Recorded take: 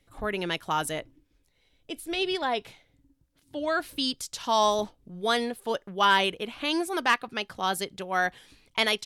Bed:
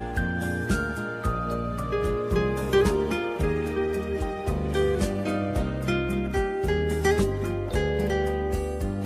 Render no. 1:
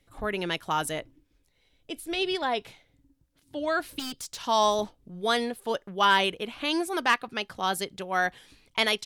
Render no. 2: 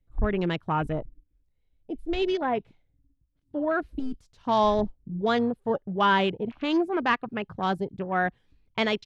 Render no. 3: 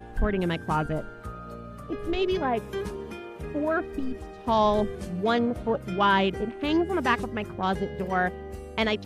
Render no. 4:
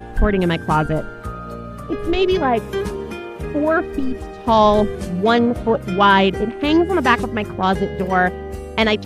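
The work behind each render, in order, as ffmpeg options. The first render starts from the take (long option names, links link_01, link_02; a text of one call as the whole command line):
ffmpeg -i in.wav -filter_complex "[0:a]asettb=1/sr,asplit=3[link_01][link_02][link_03];[link_01]atrim=end=3.994[link_04];[link_02]atrim=start=3.99:end=4.41,asetpts=PTS-STARTPTS,afade=type=in:duration=0.004:curve=qsin,afade=type=out:start_time=0.416:duration=0.004:curve=qsin,volume=33dB,asoftclip=hard,volume=-33dB[link_05];[link_03]atrim=start=4.406[link_06];[link_04][link_05]acrossfade=duration=0.004:curve1=hsin:curve2=qsin[link_07];[link_07][link_06]acrossfade=duration=0.004:curve1=qsin:curve2=hsin" out.wav
ffmpeg -i in.wav -af "afwtdn=0.0158,aemphasis=mode=reproduction:type=riaa" out.wav
ffmpeg -i in.wav -i bed.wav -filter_complex "[1:a]volume=-11.5dB[link_01];[0:a][link_01]amix=inputs=2:normalize=0" out.wav
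ffmpeg -i in.wav -af "volume=9dB,alimiter=limit=-2dB:level=0:latency=1" out.wav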